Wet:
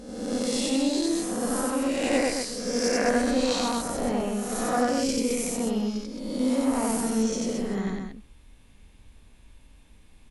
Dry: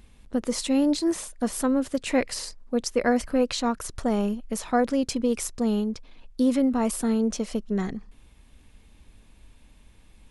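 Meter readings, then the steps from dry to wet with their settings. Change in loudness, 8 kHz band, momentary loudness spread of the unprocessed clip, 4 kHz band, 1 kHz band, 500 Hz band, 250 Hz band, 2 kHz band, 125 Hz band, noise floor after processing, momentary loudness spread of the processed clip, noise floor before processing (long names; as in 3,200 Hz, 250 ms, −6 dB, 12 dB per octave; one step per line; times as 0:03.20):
−0.5 dB, +3.0 dB, 9 LU, +3.0 dB, +1.0 dB, 0.0 dB, −1.5 dB, +2.0 dB, −0.5 dB, −54 dBFS, 5 LU, −55 dBFS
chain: peak hold with a rise ahead of every peak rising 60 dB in 1.25 s
loudspeakers that aren't time-aligned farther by 31 metres 0 dB, 75 metres −5 dB
level −6.5 dB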